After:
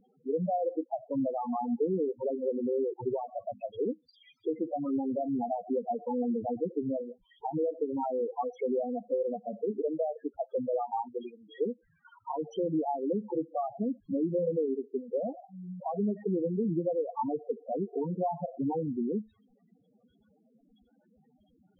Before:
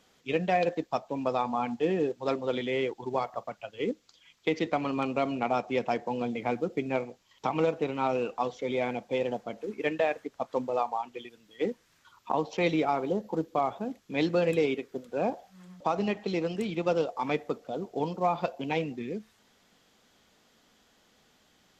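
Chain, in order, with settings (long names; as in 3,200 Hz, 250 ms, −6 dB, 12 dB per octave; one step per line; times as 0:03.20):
0:03.09–0:03.65: mains-hum notches 50/100/150/200/250 Hz
downward compressor 12 to 1, threshold −31 dBFS, peak gain reduction 11 dB
spectral peaks only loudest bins 4
low-shelf EQ 89 Hz +10.5 dB
level +6.5 dB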